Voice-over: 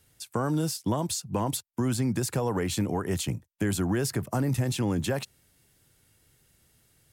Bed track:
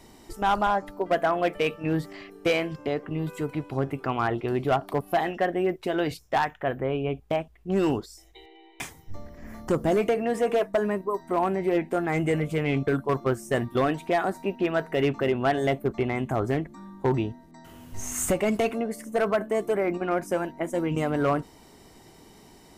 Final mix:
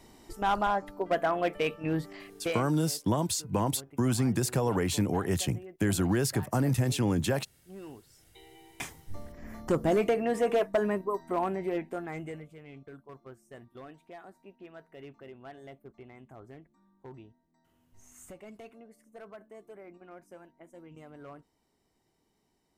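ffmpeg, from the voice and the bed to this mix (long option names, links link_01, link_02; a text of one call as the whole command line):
ffmpeg -i stem1.wav -i stem2.wav -filter_complex "[0:a]adelay=2200,volume=0dB[link_01];[1:a]volume=15dB,afade=type=out:start_time=2.31:duration=0.4:silence=0.133352,afade=type=in:start_time=8.05:duration=0.5:silence=0.112202,afade=type=out:start_time=10.96:duration=1.57:silence=0.0891251[link_02];[link_01][link_02]amix=inputs=2:normalize=0" out.wav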